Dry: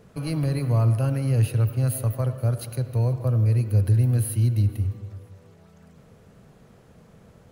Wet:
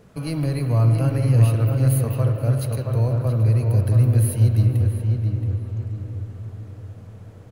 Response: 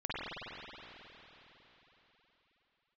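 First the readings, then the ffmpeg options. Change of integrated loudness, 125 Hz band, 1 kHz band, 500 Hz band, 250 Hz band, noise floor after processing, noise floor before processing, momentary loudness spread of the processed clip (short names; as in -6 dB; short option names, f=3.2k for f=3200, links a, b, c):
+3.0 dB, +4.0 dB, +3.5 dB, +3.5 dB, +3.5 dB, -43 dBFS, -54 dBFS, 15 LU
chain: -filter_complex "[0:a]asplit=2[a][b];[b]adelay=674,lowpass=f=2k:p=1,volume=-4dB,asplit=2[c][d];[d]adelay=674,lowpass=f=2k:p=1,volume=0.4,asplit=2[e][f];[f]adelay=674,lowpass=f=2k:p=1,volume=0.4,asplit=2[g][h];[h]adelay=674,lowpass=f=2k:p=1,volume=0.4,asplit=2[i][j];[j]adelay=674,lowpass=f=2k:p=1,volume=0.4[k];[a][c][e][g][i][k]amix=inputs=6:normalize=0,asplit=2[l][m];[1:a]atrim=start_sample=2205[n];[m][n]afir=irnorm=-1:irlink=0,volume=-11.5dB[o];[l][o]amix=inputs=2:normalize=0"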